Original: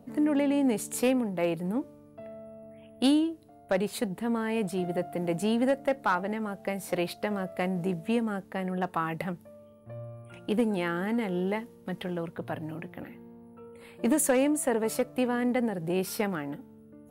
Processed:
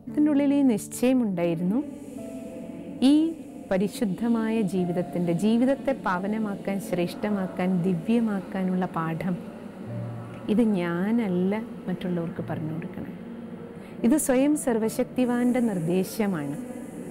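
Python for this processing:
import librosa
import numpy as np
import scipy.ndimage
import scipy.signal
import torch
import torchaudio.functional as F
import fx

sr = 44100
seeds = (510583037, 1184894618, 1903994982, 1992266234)

p1 = fx.low_shelf(x, sr, hz=270.0, db=11.5)
p2 = p1 + fx.echo_diffused(p1, sr, ms=1351, feedback_pct=72, wet_db=-16, dry=0)
y = p2 * librosa.db_to_amplitude(-1.0)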